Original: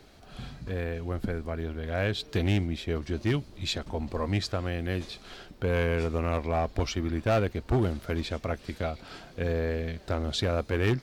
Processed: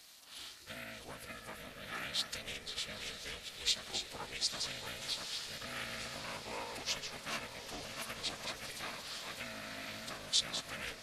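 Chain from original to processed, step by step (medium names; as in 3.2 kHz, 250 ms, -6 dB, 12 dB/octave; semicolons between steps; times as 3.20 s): chunks repeated in reverse 349 ms, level -6.5 dB; dynamic bell 400 Hz, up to +5 dB, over -45 dBFS, Q 2.9; compression 12:1, threshold -28 dBFS, peak gain reduction 10 dB; formant-preserving pitch shift -7.5 st; differentiator; ring modulator 210 Hz; on a send: echo that smears into a reverb 909 ms, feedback 64%, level -9.5 dB; on the sum: trim +13 dB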